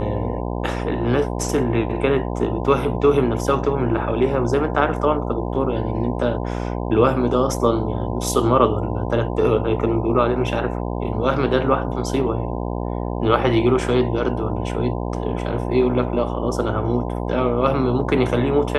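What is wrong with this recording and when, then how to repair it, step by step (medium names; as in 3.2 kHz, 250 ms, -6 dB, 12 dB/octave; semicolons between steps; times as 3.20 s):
buzz 60 Hz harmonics 17 -25 dBFS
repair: de-hum 60 Hz, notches 17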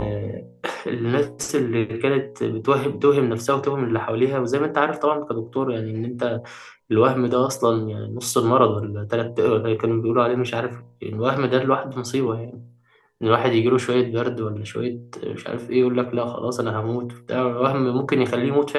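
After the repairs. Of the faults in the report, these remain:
nothing left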